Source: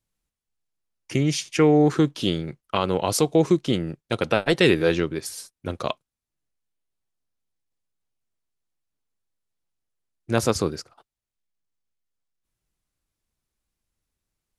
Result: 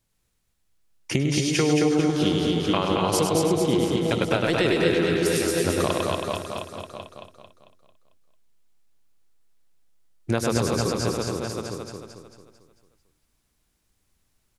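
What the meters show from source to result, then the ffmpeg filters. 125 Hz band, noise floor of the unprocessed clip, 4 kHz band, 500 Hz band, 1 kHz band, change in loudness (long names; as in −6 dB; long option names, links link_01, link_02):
+0.5 dB, below −85 dBFS, +2.0 dB, 0.0 dB, +1.5 dB, −0.5 dB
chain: -filter_complex "[0:a]asplit=2[link_01][link_02];[link_02]aecho=0:1:100|240|436|710.4|1095:0.631|0.398|0.251|0.158|0.1[link_03];[link_01][link_03]amix=inputs=2:normalize=0,acompressor=threshold=-28dB:ratio=6,asplit=2[link_04][link_05];[link_05]aecho=0:1:223|446|669|892|1115|1338:0.631|0.303|0.145|0.0698|0.0335|0.0161[link_06];[link_04][link_06]amix=inputs=2:normalize=0,volume=7.5dB"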